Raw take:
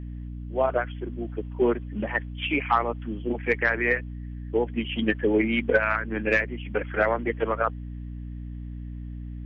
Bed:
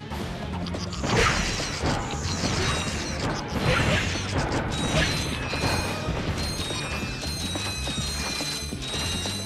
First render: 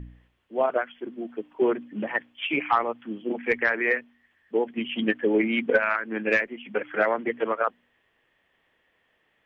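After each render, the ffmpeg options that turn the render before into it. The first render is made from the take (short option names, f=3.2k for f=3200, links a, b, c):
-af "bandreject=f=60:t=h:w=4,bandreject=f=120:t=h:w=4,bandreject=f=180:t=h:w=4,bandreject=f=240:t=h:w=4,bandreject=f=300:t=h:w=4"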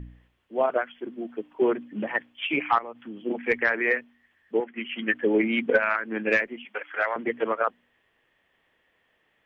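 -filter_complex "[0:a]asettb=1/sr,asplit=3[a][b][c];[a]atrim=end=2.784[d];[b]atrim=start=2.78:end=3.2,asetpts=PTS-STARTPTS,afade=t=in:d=0.004:c=qsin,afade=t=out:st=0.416:d=0.004:c=qsin,acompressor=threshold=-34dB:ratio=5:attack=3.2:release=140:knee=1:detection=peak[e];[c]atrim=start=3.196[f];[d][e]acrossfade=d=0.004:c1=hsin:c2=qsin[g];[g][f]acrossfade=d=0.004:c1=qsin:c2=hsin,asettb=1/sr,asplit=3[h][i][j];[h]atrim=end=4.604[k];[i]atrim=start=4.6:end=5.14,asetpts=PTS-STARTPTS,afade=t=in:d=0.004:c=qsin,afade=t=out:st=0.536:d=0.004:c=qsin,highpass=260,equalizer=f=280:t=q:w=4:g=-7,equalizer=f=450:t=q:w=4:g=-6,equalizer=f=640:t=q:w=4:g=-7,equalizer=f=900:t=q:w=4:g=-4,equalizer=f=1.4k:t=q:w=4:g=5,equalizer=f=2k:t=q:w=4:g=6,lowpass=f=2.9k:w=0.5412,lowpass=f=2.9k:w=1.3066[l];[j]atrim=start=5.136[m];[k][l]acrossfade=d=0.004:c1=hsin:c2=qsin[n];[n][m]acrossfade=d=0.004:c1=qsin:c2=hsin,asettb=1/sr,asplit=3[o][p][q];[o]atrim=end=6.654[r];[p]atrim=start=6.65:end=7.16,asetpts=PTS-STARTPTS,afade=t=in:d=0.004:c=qsin,afade=t=out:st=0.506:d=0.004:c=qsin,highpass=810[s];[q]atrim=start=7.156[t];[r][s]acrossfade=d=0.004:c1=hsin:c2=qsin[u];[u][t]acrossfade=d=0.004:c1=qsin:c2=hsin"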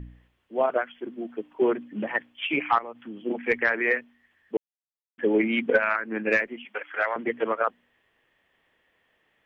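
-filter_complex "[0:a]asettb=1/sr,asplit=3[a][b][c];[a]atrim=end=5.934[d];[b]atrim=start=5.93:end=6.41,asetpts=PTS-STARTPTS,afade=t=in:d=0.004:c=qsin,afade=t=out:st=0.476:d=0.004:c=qsin,equalizer=f=3.2k:w=5.4:g=-8[e];[c]atrim=start=6.406[f];[d][e]acrossfade=d=0.004:c1=hsin:c2=qsin[g];[g][f]acrossfade=d=0.004:c1=qsin:c2=hsin,asplit=3[h][i][j];[h]atrim=end=4.57,asetpts=PTS-STARTPTS,afade=t=out:st=4.566:d=0.004:c=hsin[k];[i]atrim=start=4.57:end=5.18,asetpts=PTS-STARTPTS,volume=0[l];[j]atrim=start=5.18,asetpts=PTS-STARTPTS,afade=t=in:d=0.004:c=hsin[m];[k][l][m]concat=n=3:v=0:a=1"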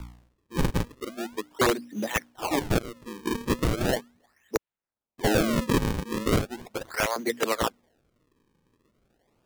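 -filter_complex "[0:a]acrossover=split=120[a][b];[b]aeval=exprs='(mod(5.62*val(0)+1,2)-1)/5.62':c=same[c];[a][c]amix=inputs=2:normalize=0,acrusher=samples=36:mix=1:aa=0.000001:lfo=1:lforange=57.6:lforate=0.38"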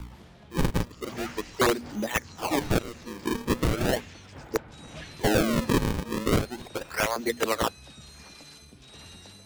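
-filter_complex "[1:a]volume=-19dB[a];[0:a][a]amix=inputs=2:normalize=0"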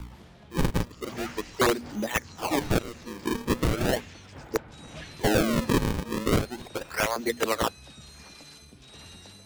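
-af anull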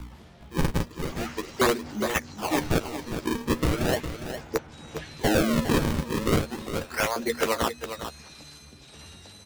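-filter_complex "[0:a]asplit=2[a][b];[b]adelay=13,volume=-9.5dB[c];[a][c]amix=inputs=2:normalize=0,aecho=1:1:408:0.335"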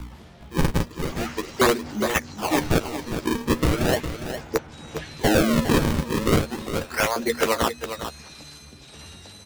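-af "volume=3.5dB"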